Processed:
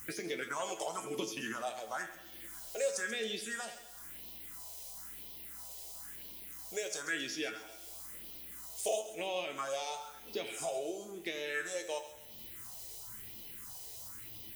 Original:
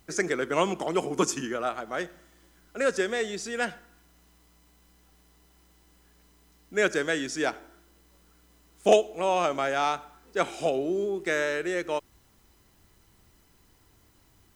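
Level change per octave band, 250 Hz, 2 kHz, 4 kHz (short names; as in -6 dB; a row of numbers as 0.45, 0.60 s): -13.0, -9.0, -4.5 dB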